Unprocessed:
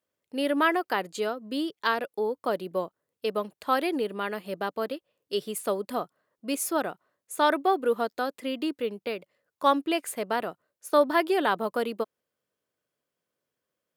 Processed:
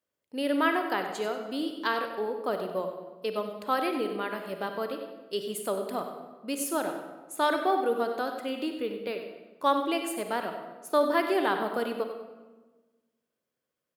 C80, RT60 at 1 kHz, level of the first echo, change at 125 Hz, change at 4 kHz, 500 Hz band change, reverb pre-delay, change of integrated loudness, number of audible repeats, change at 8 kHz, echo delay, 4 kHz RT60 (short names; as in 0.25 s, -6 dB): 6.5 dB, 1.2 s, -11.0 dB, n/a, -2.0 dB, -1.5 dB, 38 ms, -2.0 dB, 2, -2.0 dB, 96 ms, 0.85 s